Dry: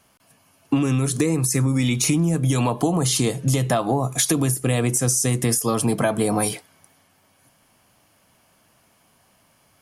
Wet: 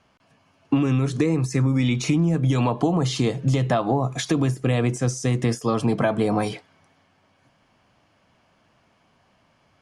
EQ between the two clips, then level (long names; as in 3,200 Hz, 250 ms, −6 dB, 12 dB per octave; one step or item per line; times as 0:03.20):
high-frequency loss of the air 140 metres
0.0 dB